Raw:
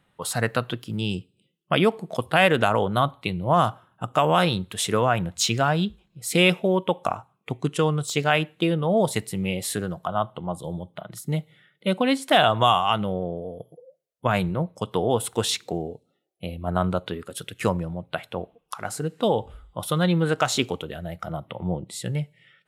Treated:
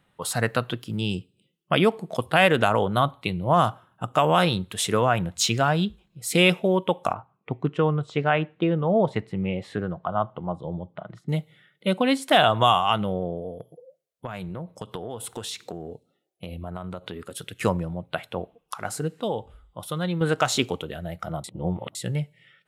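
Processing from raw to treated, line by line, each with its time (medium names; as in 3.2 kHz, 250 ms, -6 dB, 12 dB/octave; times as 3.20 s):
7.13–11.29 s: low-pass 2 kHz
13.52–17.57 s: compression, threshold -30 dBFS
19.20–20.21 s: gain -6 dB
21.44–21.95 s: reverse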